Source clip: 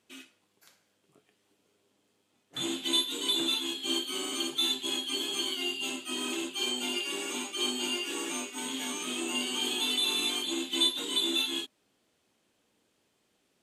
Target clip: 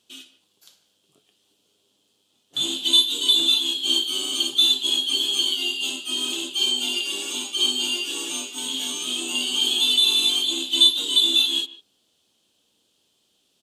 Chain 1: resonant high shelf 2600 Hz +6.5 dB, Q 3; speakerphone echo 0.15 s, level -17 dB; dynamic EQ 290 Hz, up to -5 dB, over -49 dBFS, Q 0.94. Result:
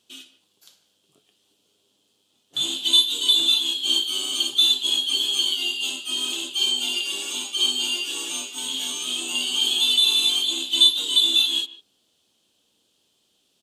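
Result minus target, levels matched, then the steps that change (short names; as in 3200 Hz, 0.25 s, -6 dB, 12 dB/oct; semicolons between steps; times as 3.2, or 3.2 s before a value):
250 Hz band -4.5 dB
remove: dynamic EQ 290 Hz, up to -5 dB, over -49 dBFS, Q 0.94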